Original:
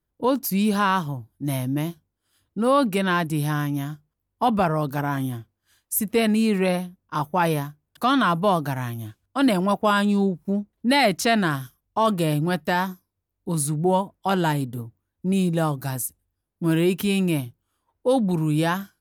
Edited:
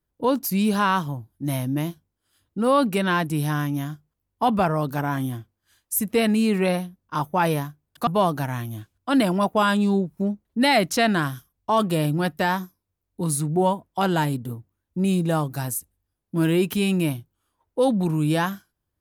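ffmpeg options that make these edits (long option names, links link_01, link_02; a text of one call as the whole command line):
ffmpeg -i in.wav -filter_complex "[0:a]asplit=2[link_01][link_02];[link_01]atrim=end=8.072[link_03];[link_02]atrim=start=8.348[link_04];[link_03][link_04]acrossfade=duration=0.004:curve1=hsin:curve2=hsin" out.wav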